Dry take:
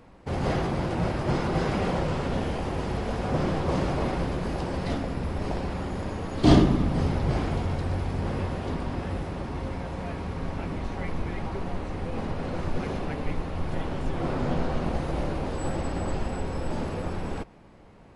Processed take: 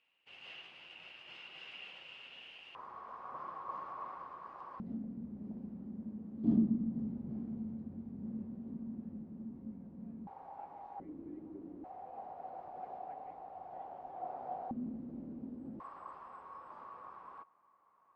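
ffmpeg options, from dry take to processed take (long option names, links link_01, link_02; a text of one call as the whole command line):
ffmpeg -i in.wav -af "asetnsamples=nb_out_samples=441:pad=0,asendcmd='2.75 bandpass f 1100;4.8 bandpass f 220;10.27 bandpass f 810;11 bandpass f 300;11.84 bandpass f 750;14.71 bandpass f 240;15.8 bandpass f 1100',bandpass=frequency=2800:width_type=q:width=12:csg=0" out.wav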